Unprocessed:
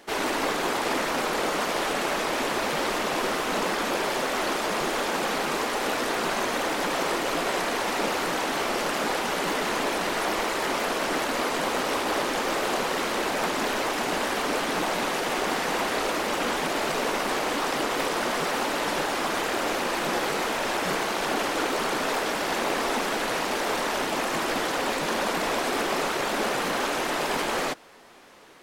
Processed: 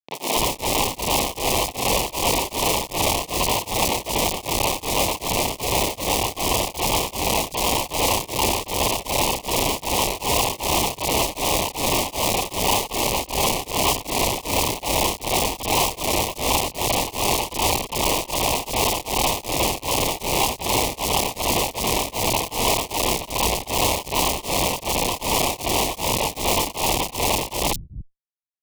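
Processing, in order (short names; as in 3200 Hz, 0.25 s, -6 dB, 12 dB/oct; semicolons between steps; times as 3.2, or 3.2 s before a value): whisperiser; resonant high shelf 1600 Hz -14 dB, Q 3; Schmitt trigger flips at -22.5 dBFS; Butterworth band-stop 1500 Hz, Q 1.1; tilt shelf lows -8 dB, about 660 Hz; three bands offset in time mids, highs, lows 30/280 ms, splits 170/4000 Hz; added harmonics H 2 -27 dB, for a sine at -11.5 dBFS; beating tremolo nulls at 2.6 Hz; gain +7.5 dB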